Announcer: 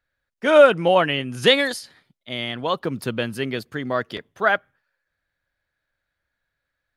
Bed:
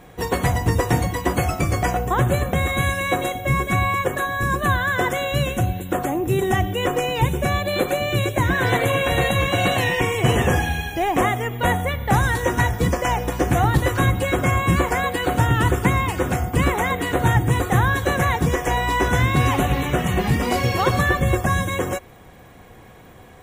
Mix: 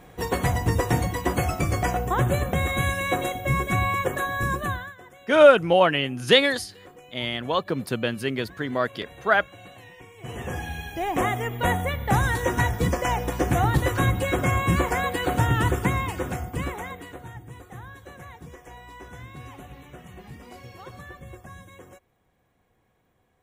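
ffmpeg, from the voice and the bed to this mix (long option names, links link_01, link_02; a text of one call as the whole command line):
ffmpeg -i stem1.wav -i stem2.wav -filter_complex "[0:a]adelay=4850,volume=-1dB[link_01];[1:a]volume=19.5dB,afade=type=out:start_time=4.45:duration=0.5:silence=0.0707946,afade=type=in:start_time=10.16:duration=1.27:silence=0.0707946,afade=type=out:start_time=15.55:duration=1.71:silence=0.1[link_02];[link_01][link_02]amix=inputs=2:normalize=0" out.wav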